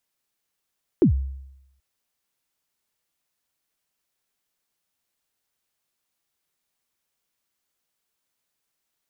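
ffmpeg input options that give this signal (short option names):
-f lavfi -i "aevalsrc='0.299*pow(10,-3*t/0.86)*sin(2*PI*(410*0.104/log(67/410)*(exp(log(67/410)*min(t,0.104)/0.104)-1)+67*max(t-0.104,0)))':d=0.78:s=44100"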